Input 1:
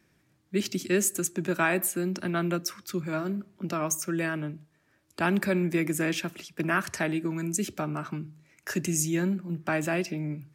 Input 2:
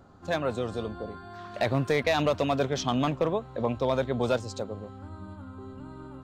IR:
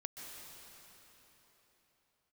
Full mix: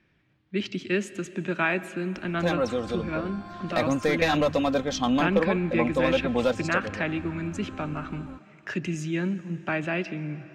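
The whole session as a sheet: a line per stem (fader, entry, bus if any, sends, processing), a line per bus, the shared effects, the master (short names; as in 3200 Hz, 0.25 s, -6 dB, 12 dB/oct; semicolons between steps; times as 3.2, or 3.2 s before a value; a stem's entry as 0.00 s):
-3.0 dB, 0.00 s, send -9.5 dB, synth low-pass 3000 Hz, resonance Q 1.7
0.0 dB, 2.15 s, no send, comb 3.8 ms, depth 64%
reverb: on, RT60 4.1 s, pre-delay 0.119 s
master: low shelf 74 Hz +6.5 dB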